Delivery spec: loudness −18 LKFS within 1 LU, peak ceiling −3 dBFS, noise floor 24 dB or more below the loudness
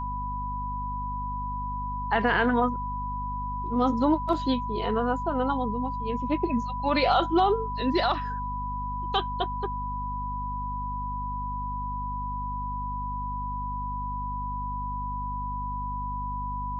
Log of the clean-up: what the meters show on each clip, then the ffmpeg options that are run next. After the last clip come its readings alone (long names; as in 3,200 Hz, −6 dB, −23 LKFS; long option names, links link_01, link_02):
mains hum 50 Hz; hum harmonics up to 250 Hz; level of the hum −32 dBFS; interfering tone 990 Hz; level of the tone −31 dBFS; integrated loudness −29.0 LKFS; sample peak −10.0 dBFS; target loudness −18.0 LKFS
→ -af "bandreject=frequency=50:width_type=h:width=6,bandreject=frequency=100:width_type=h:width=6,bandreject=frequency=150:width_type=h:width=6,bandreject=frequency=200:width_type=h:width=6,bandreject=frequency=250:width_type=h:width=6"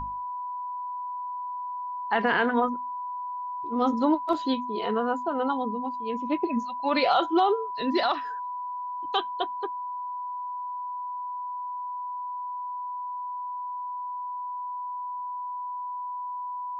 mains hum none found; interfering tone 990 Hz; level of the tone −31 dBFS
→ -af "bandreject=frequency=990:width=30"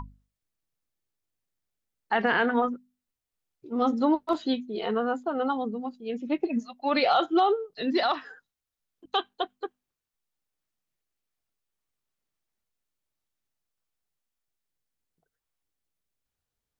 interfering tone none found; integrated loudness −27.5 LKFS; sample peak −11.5 dBFS; target loudness −18.0 LKFS
→ -af "volume=9.5dB,alimiter=limit=-3dB:level=0:latency=1"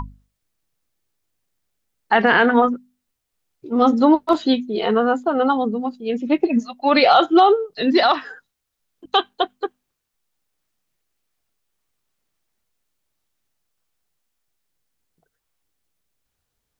integrated loudness −18.0 LKFS; sample peak −3.0 dBFS; background noise floor −78 dBFS